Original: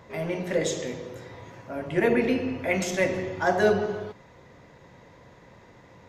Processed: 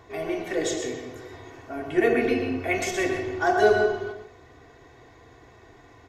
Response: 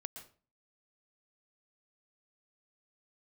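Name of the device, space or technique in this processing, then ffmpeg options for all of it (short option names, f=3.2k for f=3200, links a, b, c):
microphone above a desk: -filter_complex "[0:a]aecho=1:1:2.7:0.86[a];[1:a]atrim=start_sample=2205[b];[a][b]afir=irnorm=-1:irlink=0,volume=2.5dB"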